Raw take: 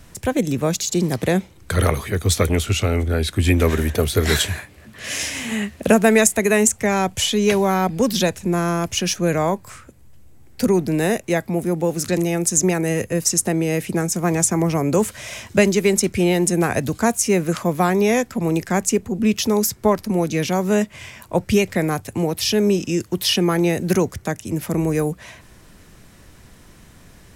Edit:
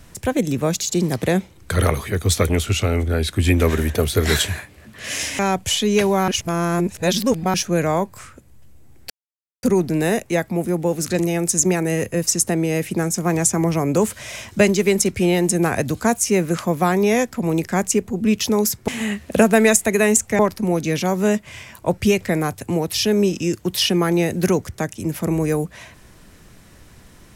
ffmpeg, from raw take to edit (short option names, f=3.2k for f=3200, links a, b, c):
-filter_complex "[0:a]asplit=7[a][b][c][d][e][f][g];[a]atrim=end=5.392[h];[b]atrim=start=6.898:end=7.792[i];[c]atrim=start=7.788:end=9.052,asetpts=PTS-STARTPTS,areverse[j];[d]atrim=start=9.048:end=10.61,asetpts=PTS-STARTPTS,afade=t=out:st=1.558:d=0.004:c=hsin,apad=pad_dur=0.53[k];[e]atrim=start=10.61:end=19.862,asetpts=PTS-STARTPTS,afade=t=in:d=0.004:c=hsin[l];[f]atrim=start=5.388:end=6.902[m];[g]atrim=start=19.858[n];[h][i]acrossfade=d=0.004:c1=hsin:c2=hsin[o];[o][j]acrossfade=d=0.004:c1=hsin:c2=hsin[p];[k][l]concat=n=2:v=0:a=1[q];[p][q]acrossfade=d=0.004:c1=hsin:c2=hsin[r];[r][m]acrossfade=d=0.004:c1=hsin:c2=hsin[s];[s][n]acrossfade=d=0.004:c1=hsin:c2=hsin"